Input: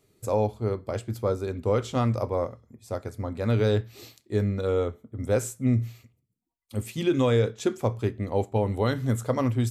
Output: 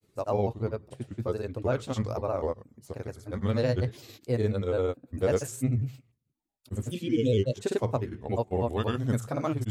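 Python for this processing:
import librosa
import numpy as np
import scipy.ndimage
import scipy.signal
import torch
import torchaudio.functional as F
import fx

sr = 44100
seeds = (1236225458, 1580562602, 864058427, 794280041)

y = fx.spec_repair(x, sr, seeds[0], start_s=6.97, length_s=0.57, low_hz=590.0, high_hz=2300.0, source='both')
y = fx.granulator(y, sr, seeds[1], grain_ms=100.0, per_s=20.0, spray_ms=100.0, spread_st=3)
y = F.gain(torch.from_numpy(y), -2.0).numpy()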